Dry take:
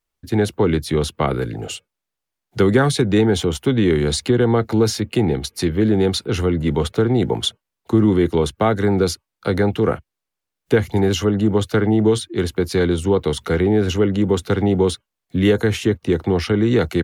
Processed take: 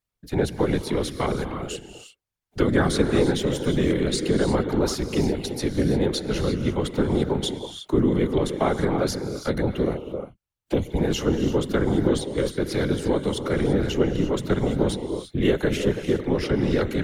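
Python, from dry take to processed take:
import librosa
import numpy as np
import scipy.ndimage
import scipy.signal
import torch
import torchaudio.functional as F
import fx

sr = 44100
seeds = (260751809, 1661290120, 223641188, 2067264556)

y = fx.env_flanger(x, sr, rest_ms=5.8, full_db=-16.0, at=(9.6, 10.97), fade=0.02)
y = fx.rev_gated(y, sr, seeds[0], gate_ms=370, shape='rising', drr_db=7.5)
y = fx.whisperise(y, sr, seeds[1])
y = F.gain(torch.from_numpy(y), -5.5).numpy()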